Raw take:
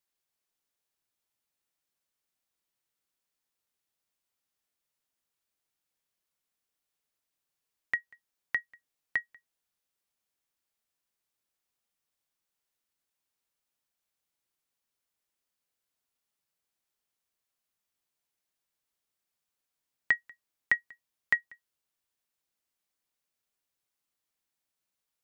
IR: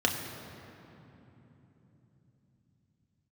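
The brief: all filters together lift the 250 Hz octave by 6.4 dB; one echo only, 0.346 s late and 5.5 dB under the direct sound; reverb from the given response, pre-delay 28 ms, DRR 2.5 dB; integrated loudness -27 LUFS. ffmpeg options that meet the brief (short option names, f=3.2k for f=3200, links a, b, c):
-filter_complex "[0:a]equalizer=f=250:t=o:g=8,aecho=1:1:346:0.531,asplit=2[a][b];[1:a]atrim=start_sample=2205,adelay=28[c];[b][c]afir=irnorm=-1:irlink=0,volume=-13.5dB[d];[a][d]amix=inputs=2:normalize=0,volume=5.5dB"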